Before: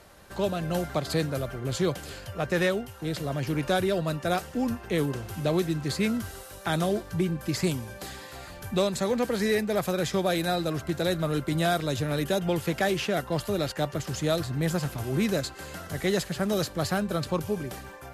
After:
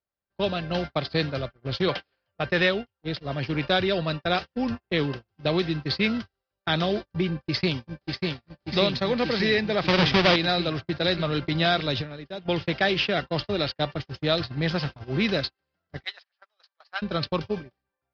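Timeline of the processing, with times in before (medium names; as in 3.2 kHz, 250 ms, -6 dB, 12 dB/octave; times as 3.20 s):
1.88–2.32 s: overdrive pedal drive 14 dB, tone 2.5 kHz, clips at -15 dBFS
7.27–8.21 s: echo throw 590 ms, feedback 80%, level -3 dB
9.88–10.36 s: square wave that keeps the level
12.01–12.48 s: compression 3:1, threshold -29 dBFS
16.04–17.02 s: high-pass 840 Hz 24 dB/octave
whole clip: elliptic low-pass 5.1 kHz, stop band 40 dB; gate -31 dBFS, range -42 dB; dynamic bell 3.4 kHz, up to +8 dB, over -47 dBFS, Q 0.71; trim +1.5 dB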